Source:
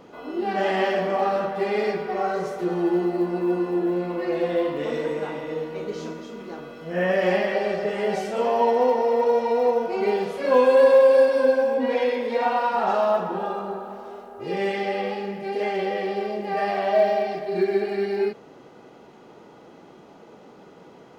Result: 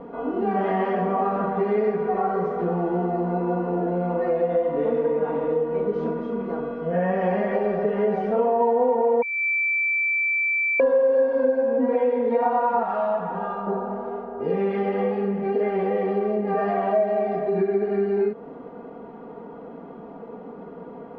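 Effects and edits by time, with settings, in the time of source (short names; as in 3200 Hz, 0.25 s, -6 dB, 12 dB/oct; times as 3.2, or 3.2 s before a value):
9.22–10.8 bleep 2330 Hz -16.5 dBFS
12.83–13.67 bell 340 Hz -13.5 dB 2 oct
whole clip: LPF 1100 Hz 12 dB/oct; comb 4.3 ms, depth 70%; compressor 3:1, threshold -28 dBFS; gain +7 dB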